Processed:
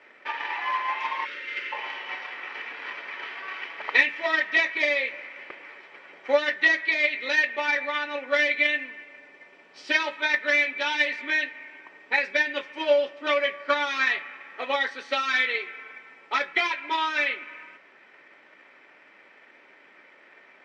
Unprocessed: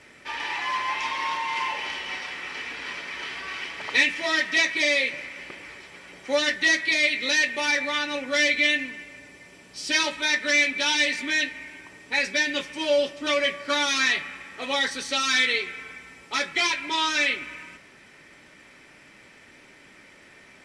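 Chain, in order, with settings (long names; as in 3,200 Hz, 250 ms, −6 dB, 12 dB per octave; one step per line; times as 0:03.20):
band-pass filter 440–2,300 Hz
gain on a spectral selection 0:01.25–0:01.72, 590–1,200 Hz −30 dB
transient designer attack +6 dB, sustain −1 dB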